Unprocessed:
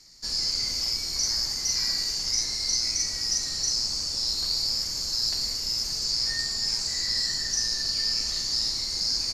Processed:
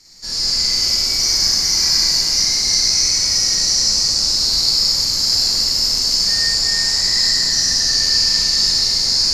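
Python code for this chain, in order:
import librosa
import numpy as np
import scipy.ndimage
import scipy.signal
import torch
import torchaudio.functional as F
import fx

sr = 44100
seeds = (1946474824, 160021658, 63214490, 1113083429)

y = fx.rev_schroeder(x, sr, rt60_s=3.0, comb_ms=33, drr_db=-7.5)
y = y * 10.0 ** (3.5 / 20.0)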